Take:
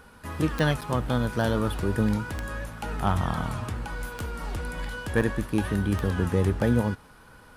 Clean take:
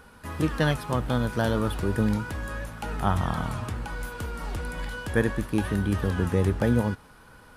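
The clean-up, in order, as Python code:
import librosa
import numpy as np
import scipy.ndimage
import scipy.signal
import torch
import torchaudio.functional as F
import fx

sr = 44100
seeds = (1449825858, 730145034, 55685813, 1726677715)

y = fx.fix_declip(x, sr, threshold_db=-12.5)
y = fx.fix_declick_ar(y, sr, threshold=10.0)
y = fx.fix_interpolate(y, sr, at_s=(0.81, 5.21), length_ms=6.9)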